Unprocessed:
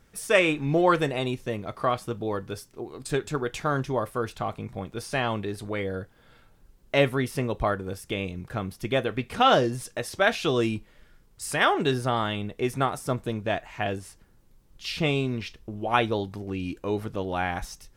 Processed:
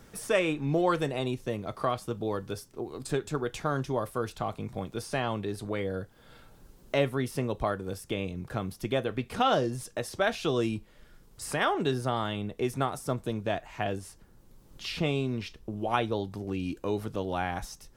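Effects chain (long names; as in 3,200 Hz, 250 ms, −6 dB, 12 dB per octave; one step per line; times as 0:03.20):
parametric band 2,100 Hz −4 dB 1.2 octaves
multiband upward and downward compressor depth 40%
level −3 dB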